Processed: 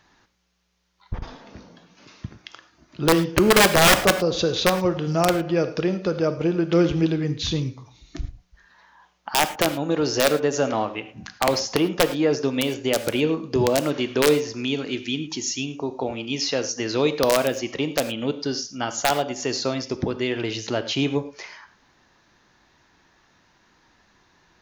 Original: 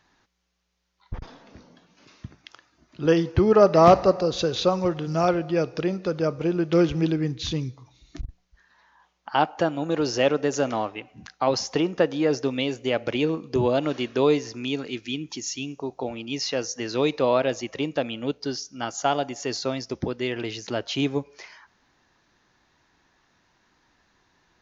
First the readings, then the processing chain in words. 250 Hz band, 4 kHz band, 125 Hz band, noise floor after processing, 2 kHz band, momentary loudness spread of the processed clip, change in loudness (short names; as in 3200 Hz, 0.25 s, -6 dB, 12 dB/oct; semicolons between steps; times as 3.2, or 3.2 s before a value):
+2.0 dB, +6.0 dB, +2.0 dB, -61 dBFS, +7.5 dB, 13 LU, +2.0 dB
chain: in parallel at -2.5 dB: compressor 16:1, threshold -29 dBFS, peak gain reduction 20 dB; on the sum: wrapped overs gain 9 dB; non-linear reverb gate 0.13 s flat, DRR 10.5 dB